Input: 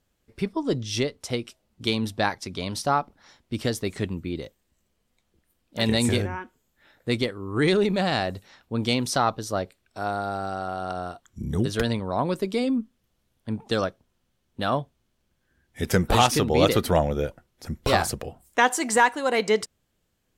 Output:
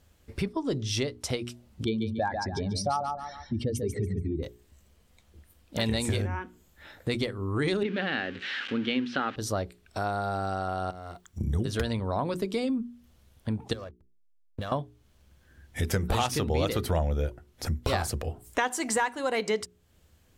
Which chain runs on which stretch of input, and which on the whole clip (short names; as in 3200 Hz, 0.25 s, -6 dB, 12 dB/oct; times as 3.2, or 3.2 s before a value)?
1.84–4.43 spectral contrast raised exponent 2.2 + hard clip -14 dBFS + feedback echo 0.142 s, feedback 26%, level -7 dB
7.83–9.36 switching spikes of -21 dBFS + speaker cabinet 250–3100 Hz, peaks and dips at 250 Hz +9 dB, 670 Hz -10 dB, 1000 Hz -9 dB, 1600 Hz +8 dB, 3000 Hz +4 dB
10.9–11.41 G.711 law mismatch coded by A + compressor 2.5:1, threshold -48 dBFS
13.73–14.72 comb 1.8 ms, depth 44% + compressor 8:1, threshold -37 dBFS + backlash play -46.5 dBFS
whole clip: bell 74 Hz +12 dB 0.68 oct; notches 60/120/180/240/300/360/420 Hz; compressor 2.5:1, threshold -41 dBFS; gain +8.5 dB